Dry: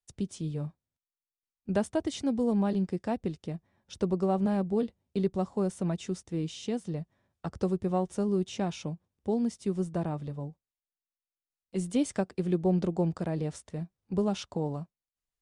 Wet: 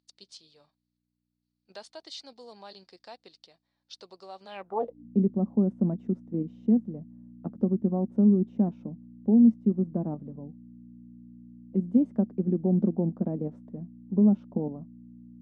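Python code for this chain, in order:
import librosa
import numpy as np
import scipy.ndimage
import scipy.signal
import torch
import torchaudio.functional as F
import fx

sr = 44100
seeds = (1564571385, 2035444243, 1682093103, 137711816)

p1 = fx.peak_eq(x, sr, hz=680.0, db=14.0, octaves=2.9)
p2 = fx.level_steps(p1, sr, step_db=23)
p3 = p1 + (p2 * 10.0 ** (2.0 / 20.0))
p4 = fx.add_hum(p3, sr, base_hz=60, snr_db=18)
p5 = fx.filter_sweep_bandpass(p4, sr, from_hz=4400.0, to_hz=220.0, start_s=4.46, end_s=5.06, q=6.5)
y = p5 * 10.0 ** (2.5 / 20.0)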